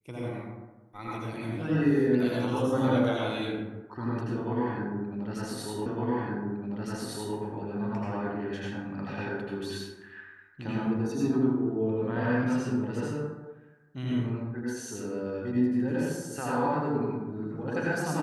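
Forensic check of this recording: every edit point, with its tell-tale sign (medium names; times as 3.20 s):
5.86 s: repeat of the last 1.51 s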